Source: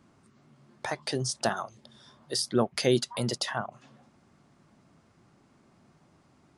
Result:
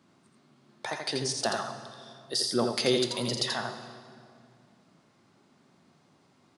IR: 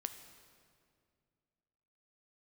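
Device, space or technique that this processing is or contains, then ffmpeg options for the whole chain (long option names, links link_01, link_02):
PA in a hall: -filter_complex "[0:a]highpass=140,equalizer=frequency=3900:width_type=o:width=0.86:gain=5.5,aecho=1:1:84:0.596[link_01];[1:a]atrim=start_sample=2205[link_02];[link_01][link_02]afir=irnorm=-1:irlink=0"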